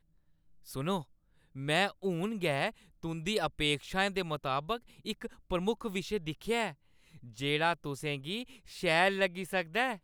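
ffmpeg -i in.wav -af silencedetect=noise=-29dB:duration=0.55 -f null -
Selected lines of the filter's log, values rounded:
silence_start: 0.00
silence_end: 0.76 | silence_duration: 0.76
silence_start: 0.98
silence_end: 1.68 | silence_duration: 0.70
silence_start: 6.69
silence_end: 7.42 | silence_duration: 0.72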